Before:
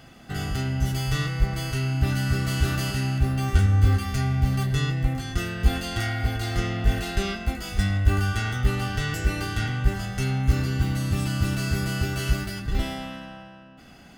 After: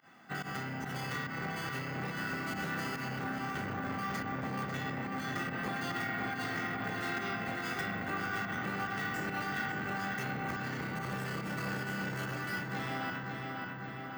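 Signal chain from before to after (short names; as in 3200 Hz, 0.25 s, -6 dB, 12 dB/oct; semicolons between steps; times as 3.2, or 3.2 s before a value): octaver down 2 oct, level +3 dB; HPF 150 Hz 24 dB/oct; band shelf 1300 Hz +9 dB; gate -33 dBFS, range -8 dB; compressor, threshold -29 dBFS, peak gain reduction 10 dB; flange 0.98 Hz, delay 9.3 ms, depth 5 ms, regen -71%; pump 142 bpm, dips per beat 1, -21 dB, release 84 ms; darkening echo 0.545 s, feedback 72%, low-pass 4100 Hz, level -4 dB; careless resampling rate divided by 2×, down filtered, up hold; core saturation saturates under 820 Hz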